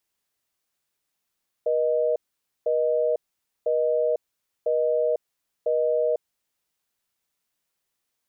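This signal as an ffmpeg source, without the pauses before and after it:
-f lavfi -i "aevalsrc='0.075*(sin(2*PI*480*t)+sin(2*PI*620*t))*clip(min(mod(t,1),0.5-mod(t,1))/0.005,0,1)':d=4.68:s=44100"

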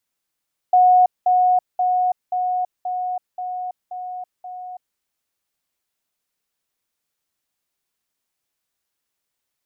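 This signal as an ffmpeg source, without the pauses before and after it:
-f lavfi -i "aevalsrc='pow(10,(-9.5-3*floor(t/0.53))/20)*sin(2*PI*730*t)*clip(min(mod(t,0.53),0.33-mod(t,0.53))/0.005,0,1)':d=4.24:s=44100"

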